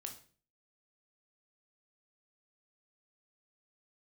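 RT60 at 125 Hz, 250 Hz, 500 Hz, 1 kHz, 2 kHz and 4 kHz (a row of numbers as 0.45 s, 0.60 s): 0.60 s, 0.55 s, 0.45 s, 0.40 s, 0.40 s, 0.40 s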